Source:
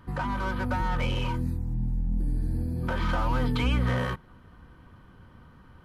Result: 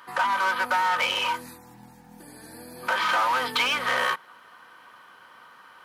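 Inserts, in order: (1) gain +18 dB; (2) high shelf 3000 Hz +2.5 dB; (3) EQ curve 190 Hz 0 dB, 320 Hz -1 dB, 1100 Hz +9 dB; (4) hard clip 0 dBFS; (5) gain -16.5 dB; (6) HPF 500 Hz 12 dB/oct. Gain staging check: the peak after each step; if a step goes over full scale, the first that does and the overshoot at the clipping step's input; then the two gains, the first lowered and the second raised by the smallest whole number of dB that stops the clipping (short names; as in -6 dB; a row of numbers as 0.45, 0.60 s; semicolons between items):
+3.0, +3.0, +8.0, 0.0, -16.5, -12.5 dBFS; step 1, 8.0 dB; step 1 +10 dB, step 5 -8.5 dB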